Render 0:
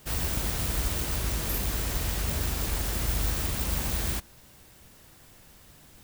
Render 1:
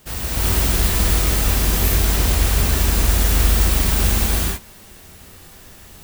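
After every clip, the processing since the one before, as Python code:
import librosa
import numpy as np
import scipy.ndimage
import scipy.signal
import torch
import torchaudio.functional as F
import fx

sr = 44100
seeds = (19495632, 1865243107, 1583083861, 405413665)

y = fx.rev_gated(x, sr, seeds[0], gate_ms=400, shape='rising', drr_db=-8.0)
y = y * librosa.db_to_amplitude(2.5)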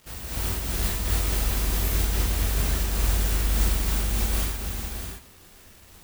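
y = fx.dmg_crackle(x, sr, seeds[1], per_s=320.0, level_db=-32.0)
y = y + 10.0 ** (-5.5 / 20.0) * np.pad(y, (int(621 * sr / 1000.0), 0))[:len(y)]
y = fx.am_noise(y, sr, seeds[2], hz=5.7, depth_pct=50)
y = y * librosa.db_to_amplitude(-7.5)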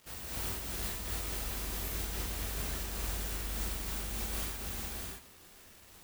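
y = fx.low_shelf(x, sr, hz=160.0, db=-7.0)
y = fx.rider(y, sr, range_db=4, speed_s=0.5)
y = y * librosa.db_to_amplitude(-8.5)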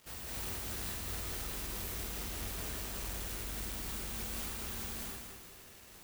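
y = 10.0 ** (-35.0 / 20.0) * np.tanh(x / 10.0 ** (-35.0 / 20.0))
y = fx.echo_feedback(y, sr, ms=192, feedback_pct=44, wet_db=-6)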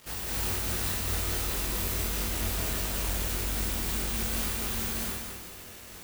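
y = fx.doubler(x, sr, ms=22.0, db=-5.5)
y = y * librosa.db_to_amplitude(8.0)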